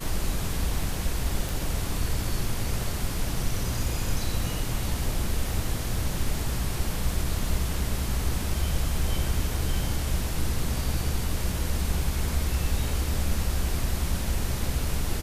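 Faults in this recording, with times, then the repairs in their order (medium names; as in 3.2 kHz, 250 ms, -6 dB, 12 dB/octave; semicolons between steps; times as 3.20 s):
1.49 s: pop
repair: de-click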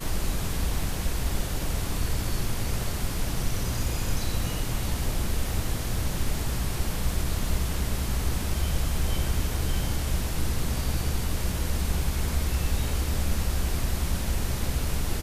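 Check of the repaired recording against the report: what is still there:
nothing left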